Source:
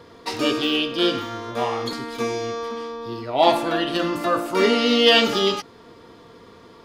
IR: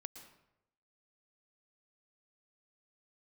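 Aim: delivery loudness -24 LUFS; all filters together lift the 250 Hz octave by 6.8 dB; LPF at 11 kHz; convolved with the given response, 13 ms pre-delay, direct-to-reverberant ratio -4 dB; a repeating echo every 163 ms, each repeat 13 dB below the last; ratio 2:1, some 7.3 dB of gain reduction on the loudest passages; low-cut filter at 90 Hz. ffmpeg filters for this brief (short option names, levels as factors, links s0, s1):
-filter_complex "[0:a]highpass=90,lowpass=11000,equalizer=f=250:t=o:g=8.5,acompressor=threshold=0.0708:ratio=2,aecho=1:1:163|326|489:0.224|0.0493|0.0108,asplit=2[s0][s1];[1:a]atrim=start_sample=2205,adelay=13[s2];[s1][s2]afir=irnorm=-1:irlink=0,volume=2.66[s3];[s0][s3]amix=inputs=2:normalize=0,volume=0.473"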